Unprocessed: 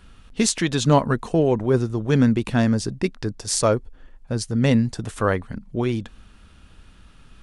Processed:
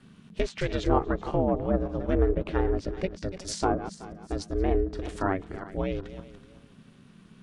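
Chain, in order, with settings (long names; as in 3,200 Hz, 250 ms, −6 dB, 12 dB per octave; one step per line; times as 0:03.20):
feedback delay that plays each chunk backwards 188 ms, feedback 48%, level −12.5 dB
treble cut that deepens with the level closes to 1,300 Hz, closed at −14 dBFS
ring modulation 190 Hz
level −3.5 dB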